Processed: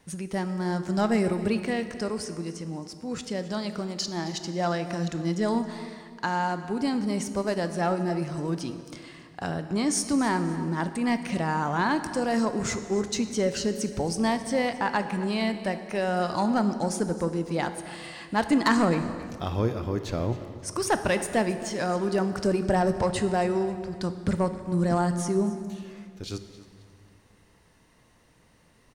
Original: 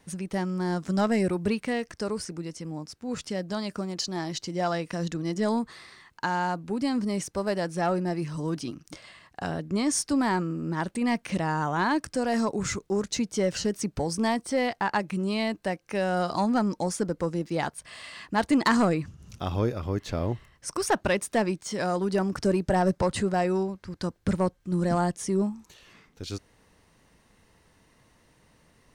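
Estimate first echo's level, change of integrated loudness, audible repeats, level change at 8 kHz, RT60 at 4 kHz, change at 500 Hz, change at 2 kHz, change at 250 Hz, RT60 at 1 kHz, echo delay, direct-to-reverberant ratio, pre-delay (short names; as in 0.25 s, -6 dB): -17.5 dB, +0.5 dB, 2, +0.5 dB, 1.6 s, +0.5 dB, +0.5 dB, +0.5 dB, 2.1 s, 0.268 s, 9.0 dB, 15 ms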